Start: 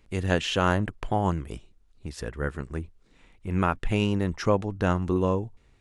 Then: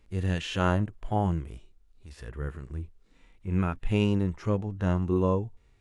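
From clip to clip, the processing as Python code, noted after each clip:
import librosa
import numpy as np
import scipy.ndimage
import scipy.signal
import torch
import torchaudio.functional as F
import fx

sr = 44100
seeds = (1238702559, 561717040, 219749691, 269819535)

y = fx.hpss(x, sr, part='percussive', gain_db=-17)
y = F.gain(torch.from_numpy(y), 1.0).numpy()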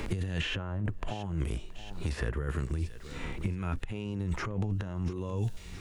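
y = fx.over_compress(x, sr, threshold_db=-36.0, ratio=-1.0)
y = fx.echo_feedback(y, sr, ms=674, feedback_pct=31, wet_db=-22)
y = fx.band_squash(y, sr, depth_pct=100)
y = F.gain(torch.from_numpy(y), 2.0).numpy()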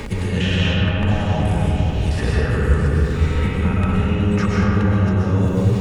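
y = fx.notch_comb(x, sr, f0_hz=340.0)
y = fx.rev_freeverb(y, sr, rt60_s=4.3, hf_ratio=0.4, predelay_ms=85, drr_db=-7.0)
y = F.gain(torch.from_numpy(y), 9.0).numpy()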